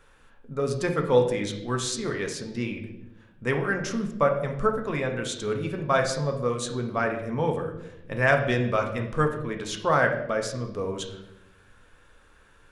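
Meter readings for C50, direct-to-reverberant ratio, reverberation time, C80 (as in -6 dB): 7.5 dB, 3.0 dB, 0.90 s, 10.5 dB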